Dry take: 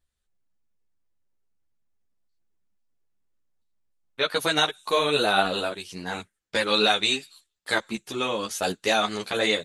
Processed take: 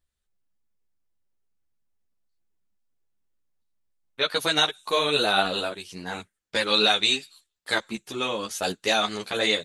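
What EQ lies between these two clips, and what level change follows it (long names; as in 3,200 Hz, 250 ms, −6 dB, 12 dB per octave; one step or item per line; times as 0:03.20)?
dynamic equaliser 4,300 Hz, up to +4 dB, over −33 dBFS, Q 0.83
−1.5 dB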